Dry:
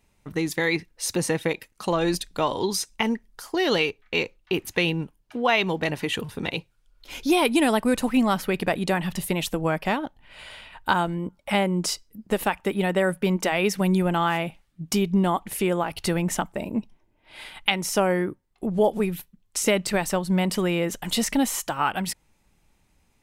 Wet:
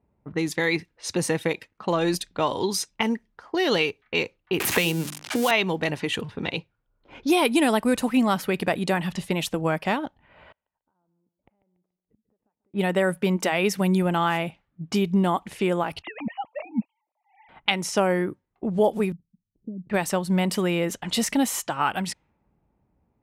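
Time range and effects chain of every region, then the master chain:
4.60–5.51 s: zero-crossing glitches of -22 dBFS + hum notches 50/100/150/200/250/300/350 Hz + three bands compressed up and down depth 100%
10.52–12.74 s: compression 8:1, threshold -32 dBFS + inverted gate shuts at -41 dBFS, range -36 dB + feedback delay 143 ms, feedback 38%, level -13.5 dB
16.02–17.49 s: formants replaced by sine waves + static phaser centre 1.5 kHz, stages 6
19.12–19.90 s: four-pole ladder low-pass 250 Hz, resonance 20% + peaking EQ 77 Hz -13 dB 0.61 oct
whole clip: high-pass 61 Hz 12 dB/octave; level-controlled noise filter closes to 800 Hz, open at -22 dBFS

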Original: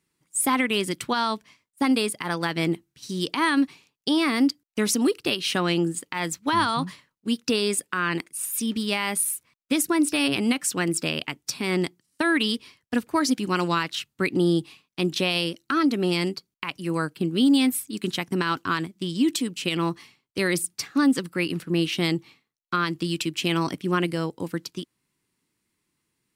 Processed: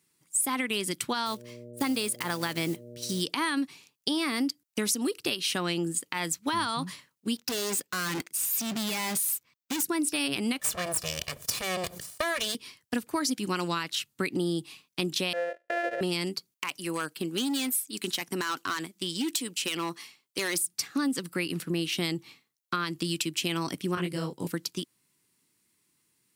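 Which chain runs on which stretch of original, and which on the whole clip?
1.25–3.20 s: block-companded coder 5-bit + mains buzz 120 Hz, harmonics 5, -45 dBFS -1 dB/octave
7.36–9.83 s: peaking EQ 10 kHz -14 dB 0.46 oct + waveshaping leveller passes 2 + overload inside the chain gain 28.5 dB
10.59–12.55 s: comb filter that takes the minimum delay 1.7 ms + decay stretcher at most 91 dB/s
15.33–16.01 s: sorted samples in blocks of 128 samples + vowel filter e + high-order bell 900 Hz +14.5 dB 2.3 oct
16.52–20.67 s: high-pass 430 Hz 6 dB/octave + hard clipper -22 dBFS
23.95–24.47 s: bass shelf 140 Hz +9.5 dB + detune thickener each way 57 cents
whole clip: high-pass 79 Hz; treble shelf 4.5 kHz +9.5 dB; compression 3:1, threshold -28 dBFS

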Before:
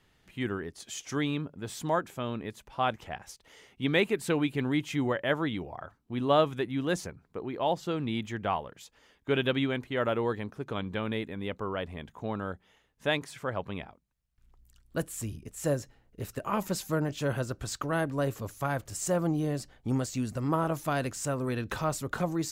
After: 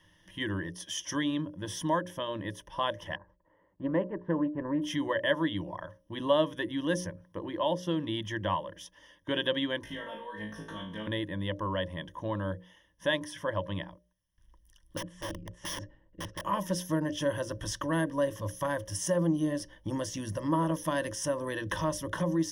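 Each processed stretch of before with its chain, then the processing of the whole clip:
3.16–4.82 s: companding laws mixed up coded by A + low-pass 1.3 kHz 24 dB/octave + loudspeaker Doppler distortion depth 0.17 ms
9.83–11.07 s: comb 4.4 ms, depth 97% + compression 12:1, threshold -39 dBFS + flutter echo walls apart 3.2 m, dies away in 0.4 s
14.97–16.42 s: tape spacing loss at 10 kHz 30 dB + hum notches 60/120/180/240 Hz + integer overflow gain 35 dB
whole clip: rippled EQ curve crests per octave 1.2, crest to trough 17 dB; compression 1.5:1, threshold -31 dBFS; hum notches 60/120/180/240/300/360/420/480/540/600 Hz

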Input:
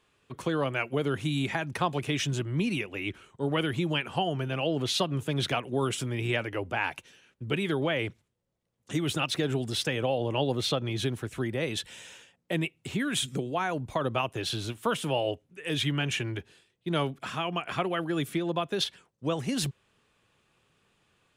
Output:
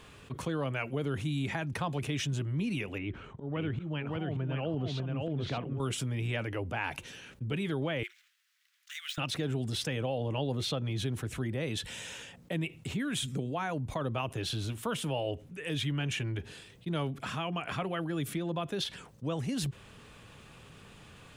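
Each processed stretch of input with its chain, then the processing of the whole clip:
2.98–5.80 s: slow attack 203 ms + tape spacing loss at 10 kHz 27 dB + delay 578 ms -3 dB
8.03–9.18 s: median filter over 5 samples + steep high-pass 1.5 kHz + upward expansion, over -54 dBFS
whole clip: bass shelf 240 Hz +7.5 dB; band-stop 360 Hz, Q 12; level flattener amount 50%; trim -9 dB

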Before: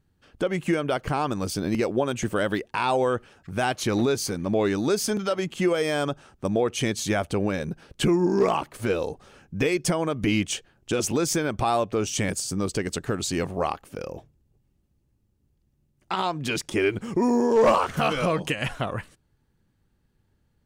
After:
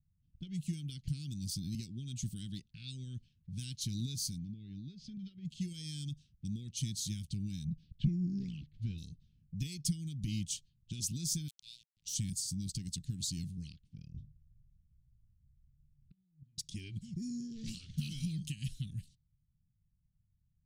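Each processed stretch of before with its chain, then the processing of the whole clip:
4.38–5.45 s: Bessel low-pass 2.8 kHz + compression 4:1, threshold -27 dBFS
7.65–8.98 s: low-pass 2.9 kHz + bass shelf 140 Hz +5.5 dB
11.48–12.14 s: inverse Chebyshev high-pass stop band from 960 Hz, stop band 50 dB + word length cut 6-bit, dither none
14.14–16.58 s: tilt EQ -2.5 dB/octave + hum notches 50/100/150/200/250/300/350/400/450 Hz + inverted gate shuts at -20 dBFS, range -32 dB
whole clip: Chebyshev band-stop 160–3900 Hz, order 3; level-controlled noise filter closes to 740 Hz, open at -31.5 dBFS; dynamic bell 270 Hz, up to +5 dB, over -49 dBFS, Q 1.2; trim -6.5 dB

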